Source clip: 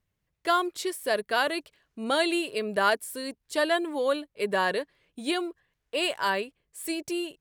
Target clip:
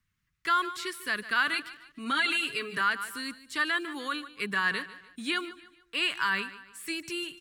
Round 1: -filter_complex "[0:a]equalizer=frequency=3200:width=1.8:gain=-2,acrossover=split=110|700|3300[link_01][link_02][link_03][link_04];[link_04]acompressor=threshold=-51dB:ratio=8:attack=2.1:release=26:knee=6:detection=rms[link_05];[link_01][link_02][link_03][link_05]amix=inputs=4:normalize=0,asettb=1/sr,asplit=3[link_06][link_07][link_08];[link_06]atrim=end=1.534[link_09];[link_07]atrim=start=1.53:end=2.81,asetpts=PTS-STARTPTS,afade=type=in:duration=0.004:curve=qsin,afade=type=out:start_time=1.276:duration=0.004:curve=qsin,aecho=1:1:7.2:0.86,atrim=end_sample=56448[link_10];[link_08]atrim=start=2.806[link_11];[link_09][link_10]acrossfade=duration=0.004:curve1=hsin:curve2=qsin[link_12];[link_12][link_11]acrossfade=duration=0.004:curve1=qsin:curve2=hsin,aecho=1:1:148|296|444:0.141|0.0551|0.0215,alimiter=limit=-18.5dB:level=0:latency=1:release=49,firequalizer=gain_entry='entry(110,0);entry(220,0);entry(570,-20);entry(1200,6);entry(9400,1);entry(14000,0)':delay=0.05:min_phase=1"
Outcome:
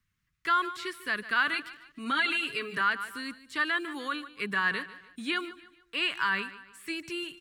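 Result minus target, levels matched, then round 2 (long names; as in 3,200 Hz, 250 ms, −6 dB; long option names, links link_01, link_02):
downward compressor: peak gain reduction +8 dB
-filter_complex "[0:a]equalizer=frequency=3200:width=1.8:gain=-2,acrossover=split=110|700|3300[link_01][link_02][link_03][link_04];[link_04]acompressor=threshold=-42dB:ratio=8:attack=2.1:release=26:knee=6:detection=rms[link_05];[link_01][link_02][link_03][link_05]amix=inputs=4:normalize=0,asettb=1/sr,asplit=3[link_06][link_07][link_08];[link_06]atrim=end=1.534[link_09];[link_07]atrim=start=1.53:end=2.81,asetpts=PTS-STARTPTS,afade=type=in:duration=0.004:curve=qsin,afade=type=out:start_time=1.276:duration=0.004:curve=qsin,aecho=1:1:7.2:0.86,atrim=end_sample=56448[link_10];[link_08]atrim=start=2.806[link_11];[link_09][link_10]acrossfade=duration=0.004:curve1=hsin:curve2=qsin[link_12];[link_12][link_11]acrossfade=duration=0.004:curve1=qsin:curve2=hsin,aecho=1:1:148|296|444:0.141|0.0551|0.0215,alimiter=limit=-18.5dB:level=0:latency=1:release=49,firequalizer=gain_entry='entry(110,0);entry(220,0);entry(570,-20);entry(1200,6);entry(9400,1);entry(14000,0)':delay=0.05:min_phase=1"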